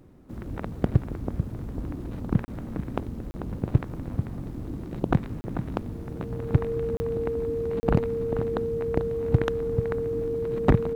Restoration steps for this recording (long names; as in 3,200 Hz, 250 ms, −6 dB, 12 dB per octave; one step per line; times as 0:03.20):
clipped peaks rebuilt −10 dBFS
notch filter 460 Hz, Q 30
repair the gap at 0:02.45/0:03.31/0:05.41/0:06.97/0:07.80, 30 ms
echo removal 441 ms −10 dB